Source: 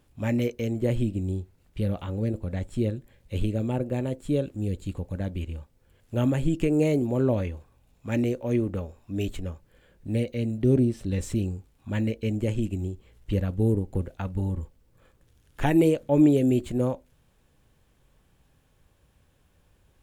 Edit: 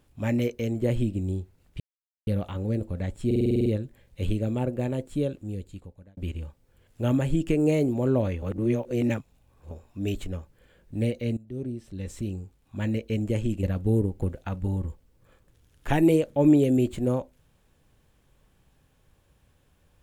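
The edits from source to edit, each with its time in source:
1.8 insert silence 0.47 s
2.79 stutter 0.05 s, 9 plays
4.15–5.3 fade out
7.55–8.84 reverse
10.5–12.24 fade in linear, from -20 dB
12.76–13.36 cut

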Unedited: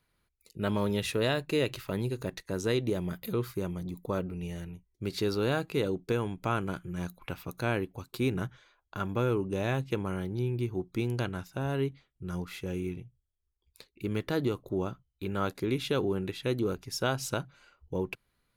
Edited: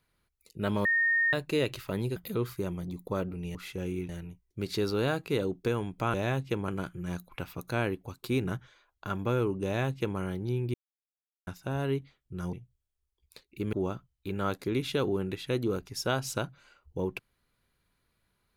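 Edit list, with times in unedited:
0.85–1.33 bleep 1840 Hz -22.5 dBFS
2.16–3.14 cut
9.55–10.09 copy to 6.58
10.64–11.37 mute
12.43–12.97 move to 4.53
14.17–14.69 cut

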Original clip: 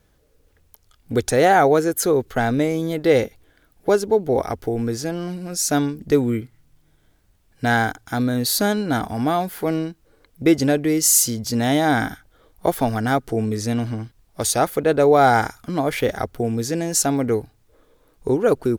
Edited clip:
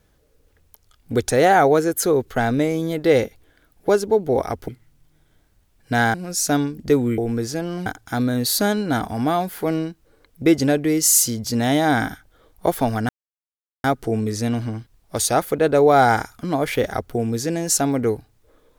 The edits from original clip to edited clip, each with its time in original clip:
4.68–5.36 swap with 6.4–7.86
13.09 insert silence 0.75 s

